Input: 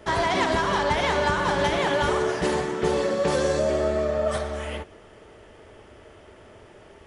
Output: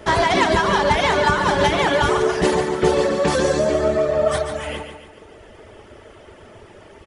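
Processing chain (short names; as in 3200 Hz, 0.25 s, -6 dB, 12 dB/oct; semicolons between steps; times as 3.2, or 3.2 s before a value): reverb removal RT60 1.1 s; feedback echo 0.143 s, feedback 48%, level -8 dB; gain +7 dB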